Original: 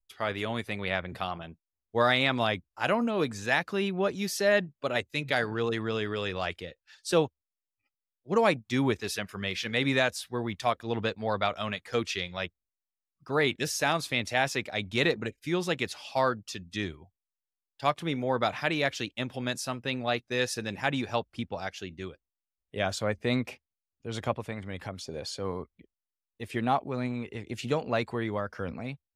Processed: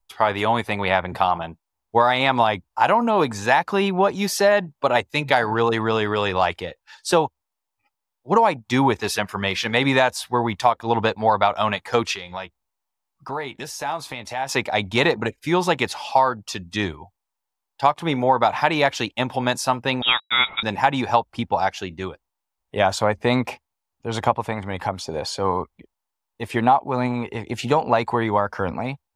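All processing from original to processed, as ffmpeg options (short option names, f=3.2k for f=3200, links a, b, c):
-filter_complex "[0:a]asettb=1/sr,asplit=3[a][b][c];[a]atrim=end=12.144[d];[b]atrim=start=12.14:end=14.49,asetpts=PTS-STARTPTS,afade=t=in:d=0.004:c=qsin,afade=t=out:st=2.346:d=0.004:c=qsin,acompressor=threshold=-42dB:ratio=3:attack=3.2:release=140:knee=1:detection=peak,asplit=2[e][f];[f]adelay=15,volume=-12dB[g];[e][g]amix=inputs=2:normalize=0,atrim=end_sample=103635[h];[c]atrim=start=14.486[i];[d][h]acrossfade=d=0.004:c1=hsin:c2=qsin[j];[j][i]acrossfade=d=0.004:c1=qsin:c2=hsin,asettb=1/sr,asplit=3[k][l][m];[k]atrim=end=20.024[n];[l]atrim=start=20.02:end=20.63,asetpts=PTS-STARTPTS,afade=t=in:d=0.004:c=qsin,afade=t=out:st=0.606:d=0.004:c=qsin,equalizer=f=1.5k:t=o:w=0.73:g=7,aeval=exprs='val(0)*gte(abs(val(0)),0.00447)':c=same,lowpass=f=3.3k:t=q:w=0.5098,lowpass=f=3.3k:t=q:w=0.6013,lowpass=f=3.3k:t=q:w=0.9,lowpass=f=3.3k:t=q:w=2.563,afreqshift=-3900[o];[m]atrim=start=20.626[p];[n][o]acrossfade=d=0.004:c1=hsin:c2=qsin[q];[q][p]acrossfade=d=0.004:c1=qsin:c2=hsin,equalizer=f=890:t=o:w=0.71:g=14.5,acompressor=threshold=-21dB:ratio=6,volume=8dB"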